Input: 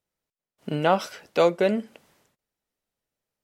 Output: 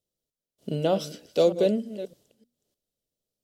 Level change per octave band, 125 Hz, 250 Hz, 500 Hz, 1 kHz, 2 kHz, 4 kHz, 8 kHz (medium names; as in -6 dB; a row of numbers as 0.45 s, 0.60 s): 0.0 dB, -0.5 dB, -0.5 dB, -9.5 dB, -12.5 dB, -1.5 dB, no reading